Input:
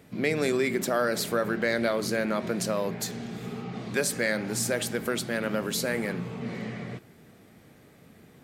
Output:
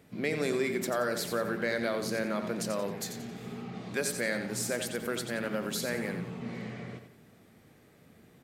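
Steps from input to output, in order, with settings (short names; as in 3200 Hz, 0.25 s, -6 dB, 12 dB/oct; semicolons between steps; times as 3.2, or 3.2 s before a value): feedback echo 89 ms, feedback 34%, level -8.5 dB; gain -5 dB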